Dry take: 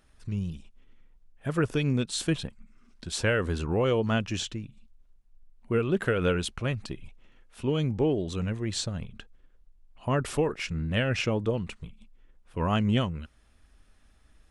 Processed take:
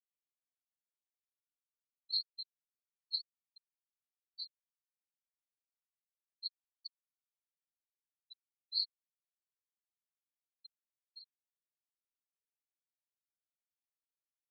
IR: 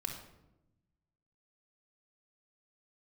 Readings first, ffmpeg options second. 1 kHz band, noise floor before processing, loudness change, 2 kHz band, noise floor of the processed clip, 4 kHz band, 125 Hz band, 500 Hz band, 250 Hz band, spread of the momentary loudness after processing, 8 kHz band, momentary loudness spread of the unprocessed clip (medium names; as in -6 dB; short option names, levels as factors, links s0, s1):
under -40 dB, -61 dBFS, -11.0 dB, under -40 dB, under -85 dBFS, -5.0 dB, under -40 dB, under -40 dB, under -40 dB, 21 LU, under -40 dB, 15 LU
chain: -af "asuperpass=centerf=4300:order=4:qfactor=7.6,afftfilt=real='re*gte(hypot(re,im),0.0282)':imag='im*gte(hypot(re,im),0.0282)':win_size=1024:overlap=0.75,volume=1.5"